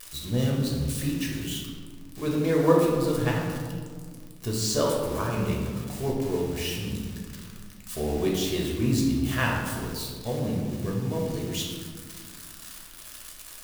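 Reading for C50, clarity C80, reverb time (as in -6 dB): 1.5 dB, 3.5 dB, 1.9 s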